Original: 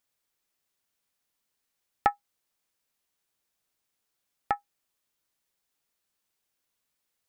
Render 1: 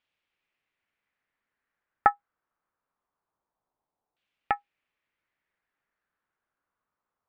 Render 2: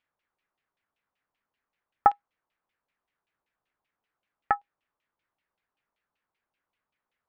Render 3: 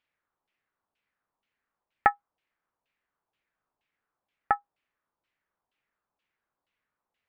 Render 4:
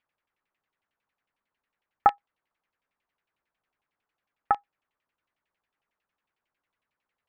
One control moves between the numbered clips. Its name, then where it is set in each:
LFO low-pass, rate: 0.24 Hz, 5.2 Hz, 2.1 Hz, 11 Hz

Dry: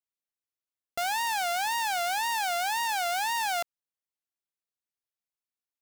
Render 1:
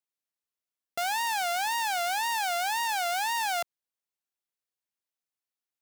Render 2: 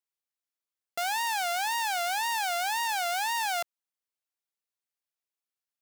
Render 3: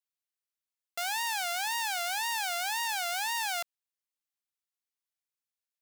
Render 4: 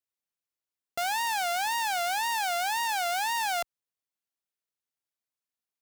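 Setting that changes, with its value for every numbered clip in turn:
high-pass, cutoff frequency: 140 Hz, 390 Hz, 1.4 kHz, 44 Hz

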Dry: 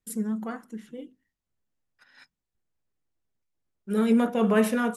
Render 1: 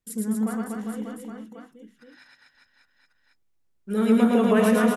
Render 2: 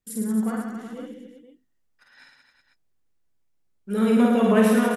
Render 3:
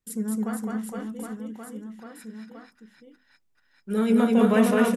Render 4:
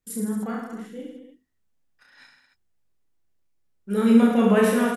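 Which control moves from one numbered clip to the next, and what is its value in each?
reverse bouncing-ball echo, first gap: 110 ms, 50 ms, 210 ms, 30 ms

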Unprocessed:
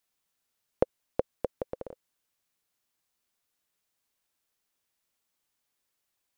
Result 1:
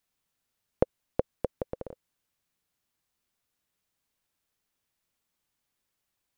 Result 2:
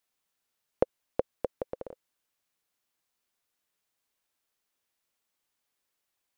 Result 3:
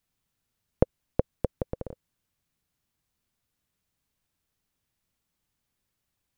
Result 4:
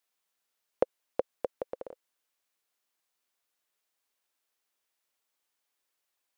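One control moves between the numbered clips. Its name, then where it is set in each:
tone controls, bass: +6 dB, -3 dB, +15 dB, -13 dB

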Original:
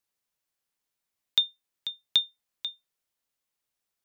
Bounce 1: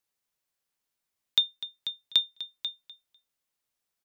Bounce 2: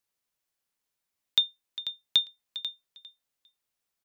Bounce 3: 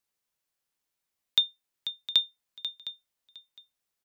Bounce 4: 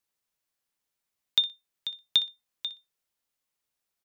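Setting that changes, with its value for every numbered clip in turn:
feedback delay, time: 249 ms, 402 ms, 710 ms, 61 ms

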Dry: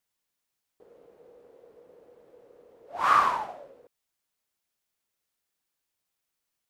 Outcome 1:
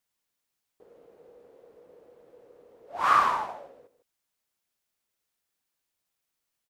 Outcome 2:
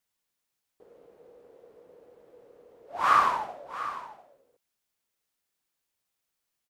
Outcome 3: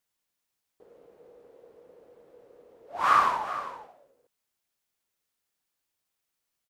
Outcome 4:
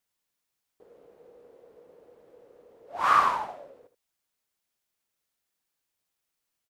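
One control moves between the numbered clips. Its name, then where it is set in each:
delay, time: 153 ms, 697 ms, 399 ms, 77 ms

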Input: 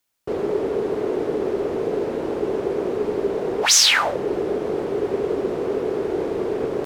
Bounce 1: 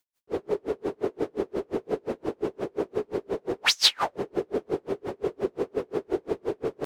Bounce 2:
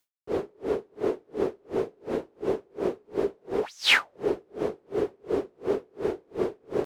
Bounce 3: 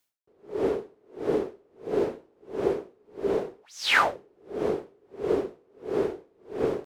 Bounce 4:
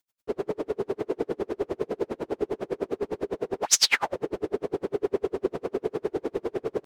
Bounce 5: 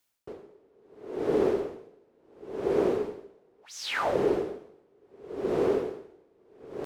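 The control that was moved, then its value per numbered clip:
logarithmic tremolo, rate: 5.7 Hz, 2.8 Hz, 1.5 Hz, 9.9 Hz, 0.71 Hz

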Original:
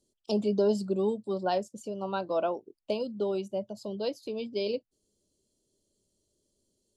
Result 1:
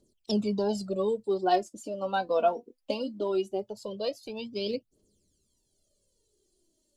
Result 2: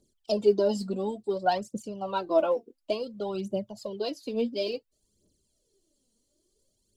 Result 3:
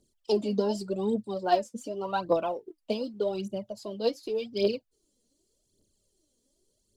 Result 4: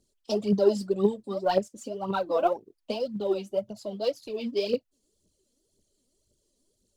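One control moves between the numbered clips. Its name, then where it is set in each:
phaser, rate: 0.2 Hz, 0.57 Hz, 0.86 Hz, 1.9 Hz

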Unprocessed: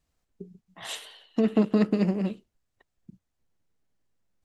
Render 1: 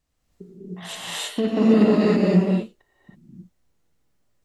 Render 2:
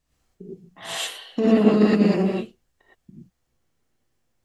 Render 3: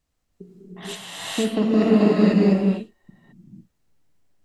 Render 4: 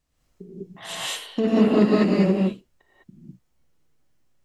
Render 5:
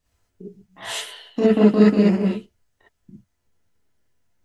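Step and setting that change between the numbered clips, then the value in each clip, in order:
gated-style reverb, gate: 350 ms, 140 ms, 520 ms, 230 ms, 80 ms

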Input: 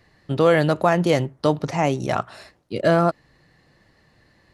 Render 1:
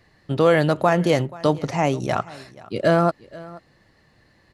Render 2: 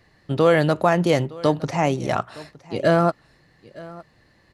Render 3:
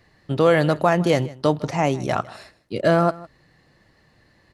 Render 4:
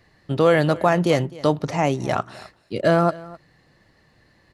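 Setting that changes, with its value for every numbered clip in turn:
delay, time: 481 ms, 913 ms, 156 ms, 258 ms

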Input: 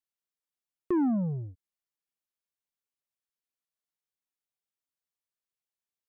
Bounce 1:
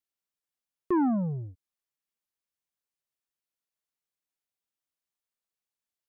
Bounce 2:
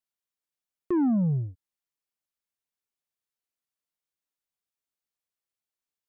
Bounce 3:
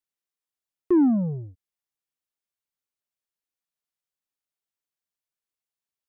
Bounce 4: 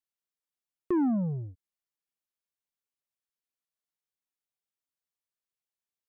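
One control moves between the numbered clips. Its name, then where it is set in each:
dynamic bell, frequency: 1.1 kHz, 120 Hz, 320 Hz, 9.7 kHz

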